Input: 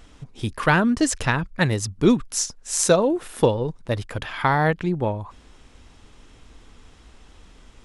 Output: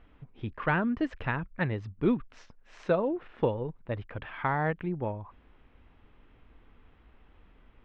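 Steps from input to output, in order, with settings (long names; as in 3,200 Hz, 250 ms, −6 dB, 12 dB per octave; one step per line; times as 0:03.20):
low-pass filter 2,700 Hz 24 dB per octave
level −9 dB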